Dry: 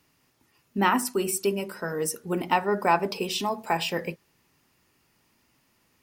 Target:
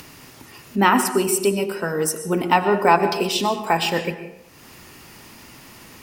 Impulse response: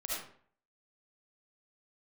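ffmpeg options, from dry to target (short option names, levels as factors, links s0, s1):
-filter_complex "[0:a]acompressor=mode=upward:threshold=0.0178:ratio=2.5,asplit=2[s0][s1];[1:a]atrim=start_sample=2205,asetrate=25578,aresample=44100[s2];[s1][s2]afir=irnorm=-1:irlink=0,volume=0.188[s3];[s0][s3]amix=inputs=2:normalize=0,volume=1.78"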